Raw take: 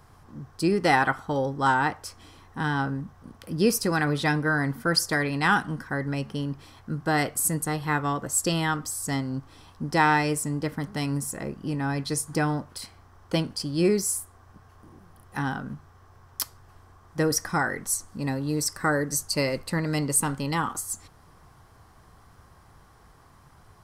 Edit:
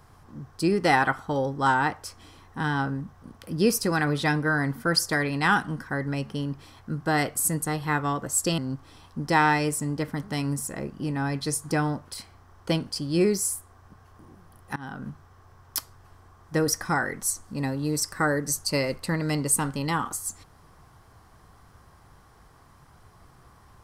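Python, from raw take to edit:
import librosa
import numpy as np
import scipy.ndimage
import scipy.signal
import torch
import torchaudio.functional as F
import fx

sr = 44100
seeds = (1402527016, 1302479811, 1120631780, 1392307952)

y = fx.edit(x, sr, fx.cut(start_s=8.58, length_s=0.64),
    fx.fade_in_from(start_s=15.4, length_s=0.3, floor_db=-23.0), tone=tone)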